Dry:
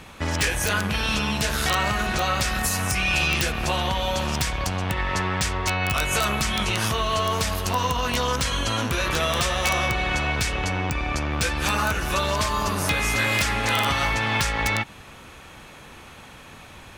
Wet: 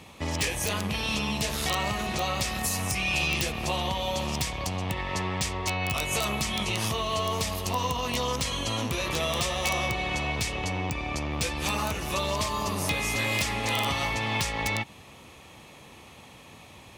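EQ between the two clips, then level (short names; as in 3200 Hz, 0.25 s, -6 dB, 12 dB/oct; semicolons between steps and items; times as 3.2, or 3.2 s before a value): HPF 69 Hz; bell 1500 Hz -13.5 dB 0.35 oct; -3.5 dB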